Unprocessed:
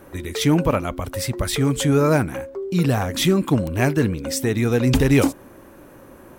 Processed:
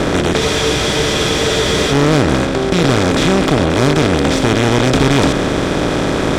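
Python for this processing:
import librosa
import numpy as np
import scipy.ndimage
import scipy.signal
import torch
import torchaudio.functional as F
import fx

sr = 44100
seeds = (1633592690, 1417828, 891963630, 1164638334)

y = fx.bin_compress(x, sr, power=0.2)
y = scipy.signal.sosfilt(scipy.signal.butter(2, 5900.0, 'lowpass', fs=sr, output='sos'), y)
y = fx.tube_stage(y, sr, drive_db=8.0, bias=0.75)
y = fx.spec_freeze(y, sr, seeds[0], at_s=0.41, hold_s=1.5)
y = F.gain(torch.from_numpy(y), 3.0).numpy()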